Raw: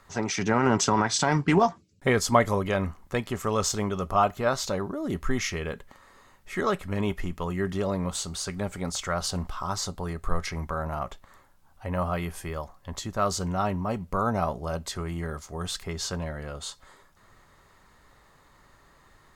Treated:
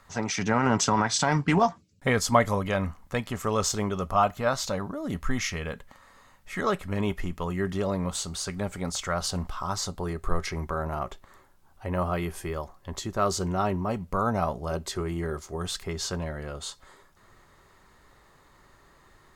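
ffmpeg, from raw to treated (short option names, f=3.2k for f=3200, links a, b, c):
-af "asetnsamples=n=441:p=0,asendcmd='3.41 equalizer g -0.5;4.04 equalizer g -10.5;6.64 equalizer g -0.5;10 equalizer g 8;13.9 equalizer g 0;14.71 equalizer g 10.5;15.56 equalizer g 4.5',equalizer=f=370:t=o:w=0.3:g=-8"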